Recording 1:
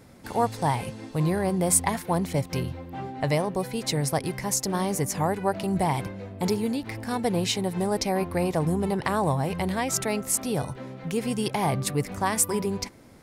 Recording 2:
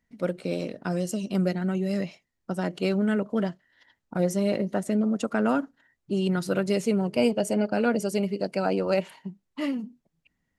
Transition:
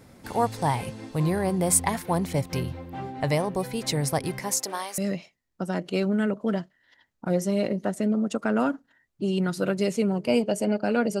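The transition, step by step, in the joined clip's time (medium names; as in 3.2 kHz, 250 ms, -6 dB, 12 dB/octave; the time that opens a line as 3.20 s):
recording 1
4.38–4.98 s: high-pass 160 Hz -> 1.4 kHz
4.98 s: go over to recording 2 from 1.87 s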